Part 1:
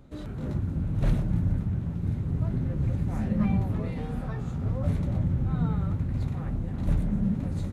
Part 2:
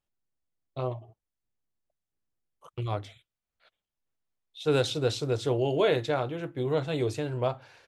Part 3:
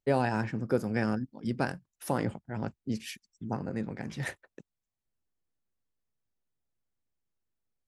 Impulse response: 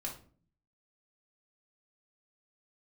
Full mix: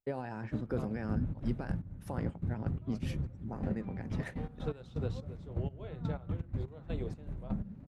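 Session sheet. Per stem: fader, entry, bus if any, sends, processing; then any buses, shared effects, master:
-1.5 dB, 0.40 s, bus A, no send, dry
-7.0 dB, 0.00 s, bus A, no send, dry
-1.5 dB, 0.00 s, no bus, no send, limiter -22.5 dBFS, peak gain reduction 9 dB
bus A: 0.0 dB, step gate "..x.x.x..xx...x." 124 bpm -12 dB; compressor 12:1, threshold -29 dBFS, peak gain reduction 8.5 dB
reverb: off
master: high shelf 3300 Hz -10 dB; upward expander 1.5:1, over -41 dBFS

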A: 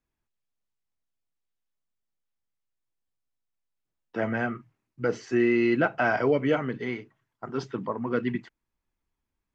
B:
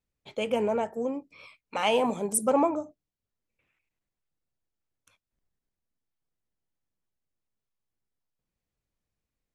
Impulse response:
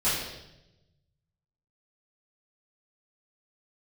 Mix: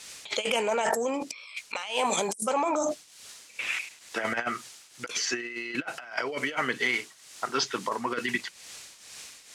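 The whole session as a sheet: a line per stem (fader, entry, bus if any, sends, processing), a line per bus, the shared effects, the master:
+3.0 dB, 0.00 s, no send, dry
-3.0 dB, 0.00 s, no send, tremolo triangle 2.2 Hz, depth 75%; fast leveller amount 100%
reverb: off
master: weighting filter ITU-R 468; negative-ratio compressor -29 dBFS, ratio -0.5

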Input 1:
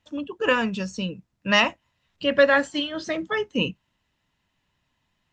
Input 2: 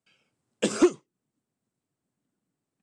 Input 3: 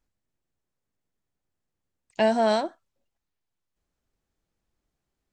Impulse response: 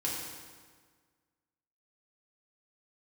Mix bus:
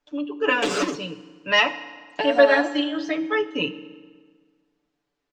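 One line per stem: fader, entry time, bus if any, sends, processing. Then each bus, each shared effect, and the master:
-3.5 dB, 0.00 s, no bus, send -14.5 dB, gate with hold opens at -40 dBFS
-5.5 dB, 0.00 s, bus A, send -23 dB, sample leveller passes 5
+3.0 dB, 0.00 s, bus A, send -23.5 dB, dry
bus A: 0.0 dB, compressor, threshold -24 dBFS, peak gain reduction 10 dB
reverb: on, RT60 1.6 s, pre-delay 3 ms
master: three-band isolator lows -13 dB, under 230 Hz, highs -19 dB, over 6100 Hz; comb 6.9 ms, depth 92%

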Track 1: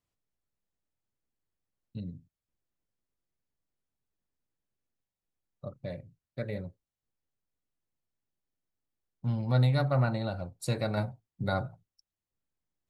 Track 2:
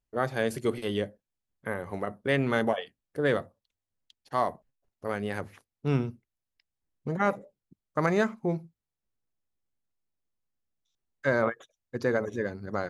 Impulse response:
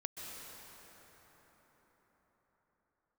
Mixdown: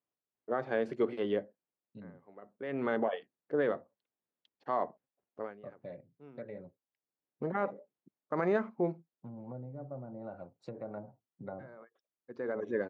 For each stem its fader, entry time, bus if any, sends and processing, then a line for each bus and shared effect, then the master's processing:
-0.5 dB, 0.00 s, no send, treble ducked by the level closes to 500 Hz, closed at -24.5 dBFS; compressor 2:1, threshold -36 dBFS, peak gain reduction 8.5 dB
+1.5 dB, 0.35 s, no send, limiter -17.5 dBFS, peak gain reduction 6 dB; auto duck -22 dB, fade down 0.25 s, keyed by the first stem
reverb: off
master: HPF 270 Hz 12 dB/oct; tape spacing loss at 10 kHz 38 dB

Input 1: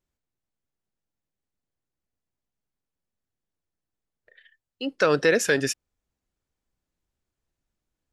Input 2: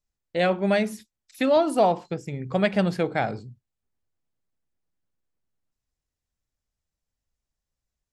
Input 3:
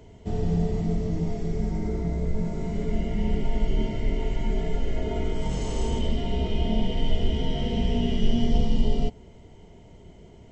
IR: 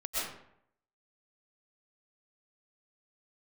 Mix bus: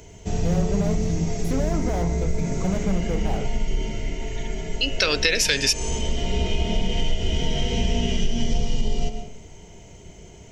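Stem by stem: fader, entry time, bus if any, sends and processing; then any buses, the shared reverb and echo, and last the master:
-2.0 dB, 0.00 s, no send, band shelf 3400 Hz +14 dB
0.0 dB, 0.10 s, no send, treble ducked by the level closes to 1600 Hz, closed at -21 dBFS; slew limiter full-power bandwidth 27 Hz
+3.0 dB, 0.00 s, send -16.5 dB, thirty-one-band EQ 250 Hz -5 dB, 1600 Hz +4 dB, 2500 Hz +7 dB, 6300 Hz +11 dB; auto duck -7 dB, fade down 1.70 s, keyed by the first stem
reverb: on, RT60 0.70 s, pre-delay 85 ms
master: high shelf 5200 Hz +10.5 dB; de-hum 108 Hz, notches 30; compressor, threshold -16 dBFS, peak gain reduction 7.5 dB

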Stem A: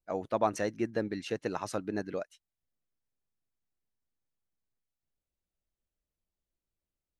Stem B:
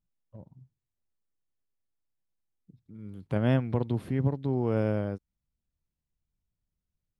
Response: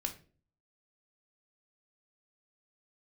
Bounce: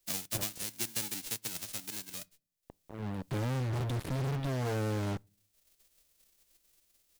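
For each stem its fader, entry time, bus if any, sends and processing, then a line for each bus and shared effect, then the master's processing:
-2.0 dB, 0.00 s, send -23 dB, spectral whitening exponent 0.1; bell 1100 Hz -9.5 dB 2.3 oct; three-band squash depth 70%; auto duck -10 dB, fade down 1.65 s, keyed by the second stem
-18.5 dB, 0.00 s, send -22.5 dB, low shelf 190 Hz +6.5 dB; comb 6.9 ms, depth 41%; fuzz box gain 47 dB, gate -40 dBFS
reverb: on, RT60 0.40 s, pre-delay 3 ms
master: dry

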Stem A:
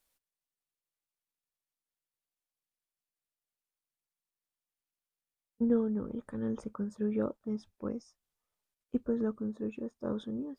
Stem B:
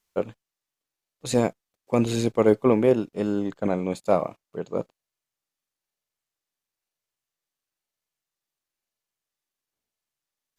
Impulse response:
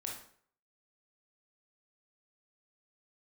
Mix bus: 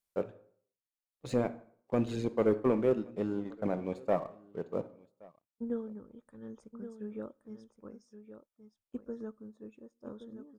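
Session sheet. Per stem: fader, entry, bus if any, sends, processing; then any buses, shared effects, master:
-6.0 dB, 0.00 s, send -23.5 dB, echo send -10 dB, tone controls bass -3 dB, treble +6 dB; upward expander 1.5:1, over -43 dBFS
-12.0 dB, 0.00 s, send -7.5 dB, echo send -23 dB, LPF 1800 Hz 6 dB/oct; reverb removal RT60 0.66 s; sample leveller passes 1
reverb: on, RT60 0.55 s, pre-delay 18 ms
echo: echo 1.122 s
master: dry

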